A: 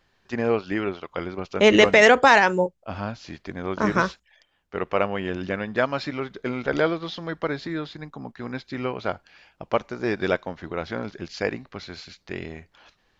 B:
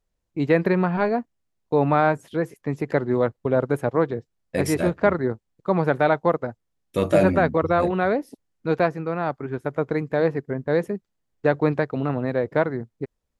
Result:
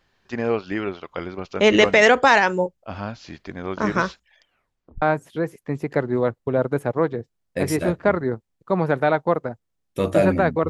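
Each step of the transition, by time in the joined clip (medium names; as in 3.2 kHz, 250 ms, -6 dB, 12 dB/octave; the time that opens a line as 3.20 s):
A
4.46 s: tape stop 0.56 s
5.02 s: go over to B from 2.00 s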